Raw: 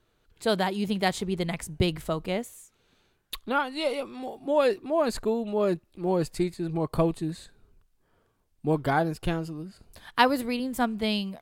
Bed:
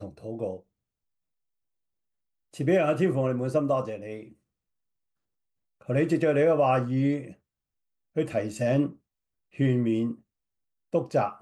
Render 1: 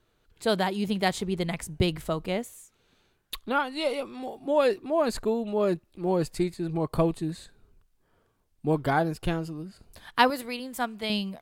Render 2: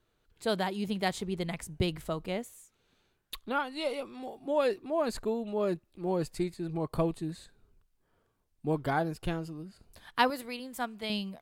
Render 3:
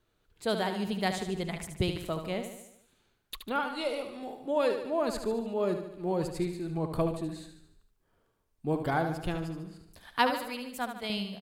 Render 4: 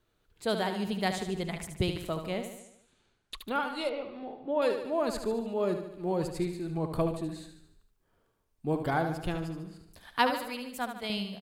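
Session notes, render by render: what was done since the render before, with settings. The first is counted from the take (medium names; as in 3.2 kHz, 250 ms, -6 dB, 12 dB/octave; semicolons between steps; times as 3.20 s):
10.30–11.10 s: bass shelf 360 Hz -12 dB
trim -5 dB
feedback delay 74 ms, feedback 54%, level -8 dB
2.59–3.37 s: low-pass 9.8 kHz 24 dB/octave; 3.89–4.62 s: distance through air 270 m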